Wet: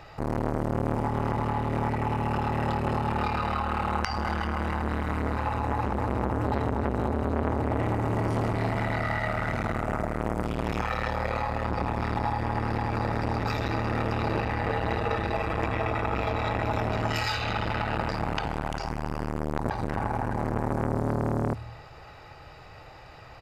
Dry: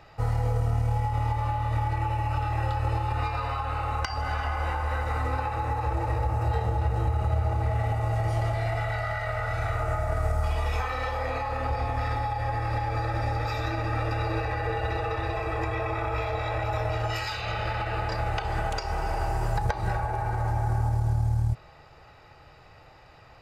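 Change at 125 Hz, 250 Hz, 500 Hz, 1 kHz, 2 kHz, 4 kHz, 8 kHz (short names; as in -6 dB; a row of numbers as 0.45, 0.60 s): -3.0, +10.0, +2.5, 0.0, +0.5, +1.0, -1.0 dB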